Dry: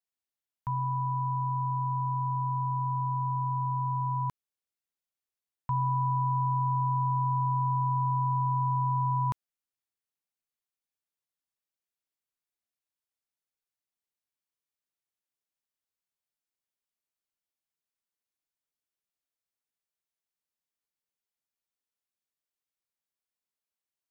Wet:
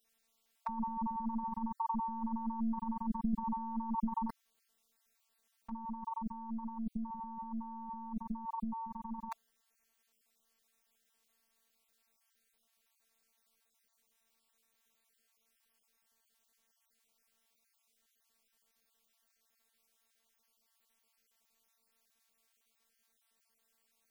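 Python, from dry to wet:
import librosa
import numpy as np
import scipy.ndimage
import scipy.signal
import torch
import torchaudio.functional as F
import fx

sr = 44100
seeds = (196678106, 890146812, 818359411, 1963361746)

y = fx.spec_dropout(x, sr, seeds[0], share_pct=30)
y = fx.robotise(y, sr, hz=226.0)
y = fx.over_compress(y, sr, threshold_db=-45.0, ratio=-0.5)
y = y * librosa.db_to_amplitude(9.5)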